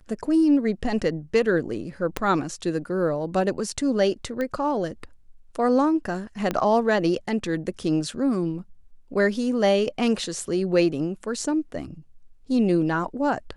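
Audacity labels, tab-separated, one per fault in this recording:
2.170000	2.170000	click −10 dBFS
4.410000	4.410000	click −17 dBFS
6.510000	6.510000	click −12 dBFS

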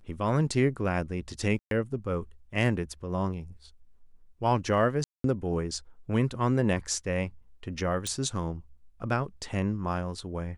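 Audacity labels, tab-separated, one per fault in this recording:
1.590000	1.710000	drop-out 122 ms
5.040000	5.240000	drop-out 203 ms
8.070000	8.070000	click −18 dBFS

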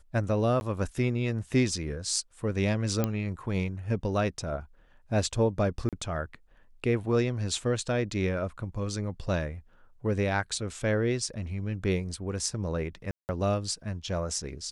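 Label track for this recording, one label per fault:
0.600000	0.610000	drop-out 11 ms
3.040000	3.040000	click −13 dBFS
5.890000	5.930000	drop-out 37 ms
13.110000	13.290000	drop-out 179 ms

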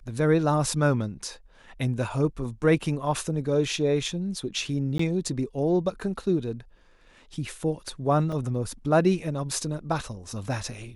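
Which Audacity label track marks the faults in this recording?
4.980000	4.990000	drop-out 14 ms
8.320000	8.320000	drop-out 4.5 ms

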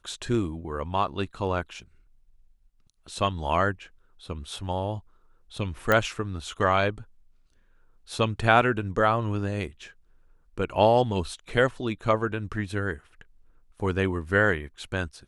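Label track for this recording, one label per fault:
5.920000	5.920000	click −9 dBFS

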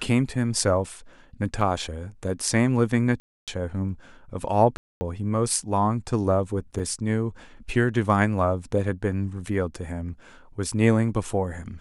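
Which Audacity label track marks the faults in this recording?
1.610000	1.610000	drop-out 2.4 ms
3.200000	3.480000	drop-out 277 ms
4.770000	5.010000	drop-out 240 ms
6.790000	6.790000	drop-out 4.8 ms

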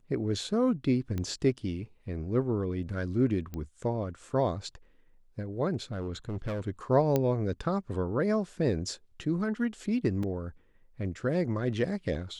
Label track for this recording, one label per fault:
1.180000	1.180000	click −21 dBFS
3.540000	3.540000	click −24 dBFS
5.820000	6.600000	clipping −30 dBFS
7.160000	7.160000	click −13 dBFS
10.230000	10.230000	drop-out 3.6 ms

